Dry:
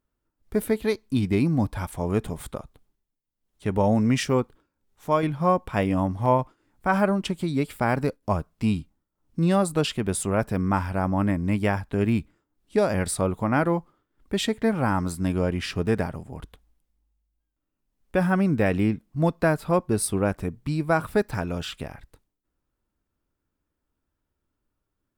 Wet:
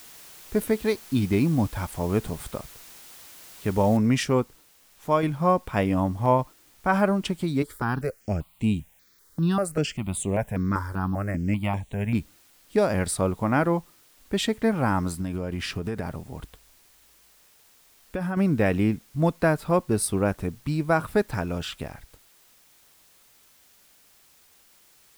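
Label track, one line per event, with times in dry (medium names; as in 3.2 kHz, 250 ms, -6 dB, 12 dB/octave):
3.970000	3.970000	noise floor step -47 dB -58 dB
7.620000	12.150000	stepped phaser 5.1 Hz 710–5000 Hz
15.150000	18.370000	compression 10:1, threshold -24 dBFS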